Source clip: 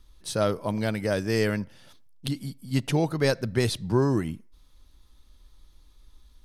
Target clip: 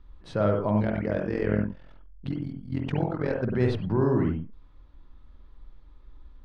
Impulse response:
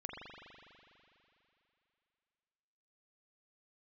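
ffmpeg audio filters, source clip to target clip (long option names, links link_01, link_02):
-filter_complex "[0:a]lowpass=1800,alimiter=limit=-19.5dB:level=0:latency=1:release=77,asettb=1/sr,asplit=3[link_01][link_02][link_03];[link_01]atrim=end=0.824[link_04];[link_02]atrim=start=0.82:end=3.39,asetpts=PTS-STARTPTS,afade=type=in:duration=0.004:curve=qsin,afade=type=out:start_time=2.566:duration=0.004:curve=qsin,tremolo=f=43:d=0.857[link_05];[link_03]atrim=start=3.386[link_06];[link_04][link_05]acrossfade=duration=0.004:curve1=hsin:curve2=qsin[link_07];[link_07][link_06]acrossfade=duration=0.004:curve1=qsin:curve2=hsin[link_08];[1:a]atrim=start_sample=2205,atrim=end_sample=3969,asetrate=37926,aresample=44100[link_09];[link_08][link_09]afir=irnorm=-1:irlink=0,volume=7dB"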